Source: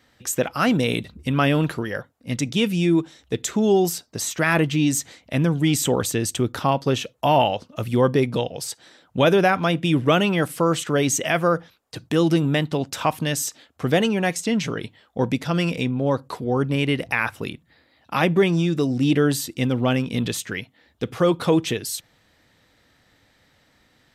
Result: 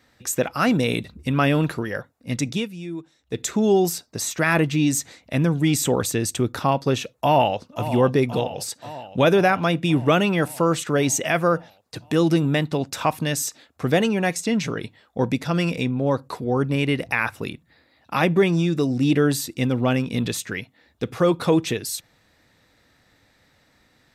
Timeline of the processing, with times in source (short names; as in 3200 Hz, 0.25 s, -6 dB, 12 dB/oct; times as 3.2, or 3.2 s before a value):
2.52–3.4 dip -13.5 dB, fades 0.16 s
7.12–7.86 echo throw 0.53 s, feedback 70%, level -12.5 dB
whole clip: notch 3100 Hz, Q 11